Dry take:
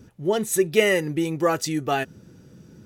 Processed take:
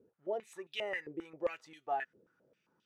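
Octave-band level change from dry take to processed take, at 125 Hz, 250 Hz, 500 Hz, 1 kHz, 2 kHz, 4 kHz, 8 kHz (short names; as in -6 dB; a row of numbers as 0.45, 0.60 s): -31.5 dB, -23.0 dB, -17.0 dB, -11.5 dB, -15.5 dB, -16.0 dB, under -30 dB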